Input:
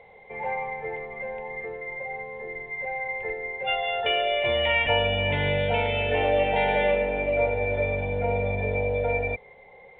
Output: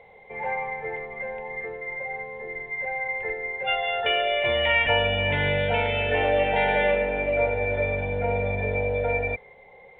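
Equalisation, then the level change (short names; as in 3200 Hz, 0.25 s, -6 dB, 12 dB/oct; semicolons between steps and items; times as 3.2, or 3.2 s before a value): dynamic EQ 1600 Hz, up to +6 dB, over -45 dBFS, Q 2.2; 0.0 dB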